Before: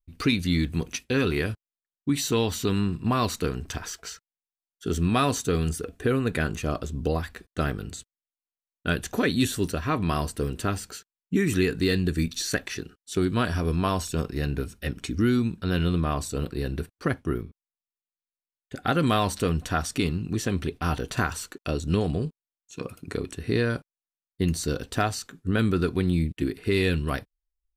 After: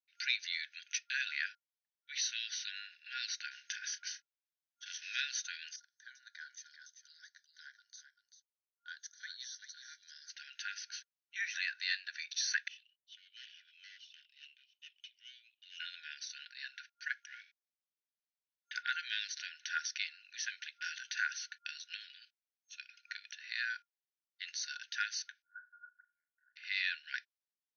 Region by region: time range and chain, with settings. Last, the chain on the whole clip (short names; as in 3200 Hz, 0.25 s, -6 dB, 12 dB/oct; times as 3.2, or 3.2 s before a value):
3.51–5.22 block floating point 5-bit + doubler 30 ms -12.5 dB
5.76–10.3 differentiator + fixed phaser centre 710 Hz, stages 6 + echo 0.389 s -9 dB
12.68–15.8 double band-pass 1400 Hz, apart 2.2 oct + tube stage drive 40 dB, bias 0.5
17.22–18.83 negative-ratio compressor -31 dBFS + sample leveller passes 2
20.47–21.09 high shelf 7200 Hz +6.5 dB + doubler 13 ms -13 dB + mismatched tape noise reduction decoder only
25.42–26.56 steep low-pass 1300 Hz 72 dB/oct + flutter echo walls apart 6.4 m, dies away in 0.22 s
whole clip: dynamic EQ 3100 Hz, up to -4 dB, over -42 dBFS, Q 1.7; FFT band-pass 1400–6400 Hz; gain -2.5 dB